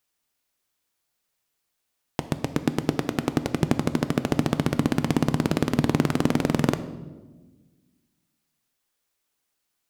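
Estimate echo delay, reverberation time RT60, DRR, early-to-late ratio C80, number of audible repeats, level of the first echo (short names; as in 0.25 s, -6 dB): none, 1.3 s, 10.5 dB, 15.0 dB, none, none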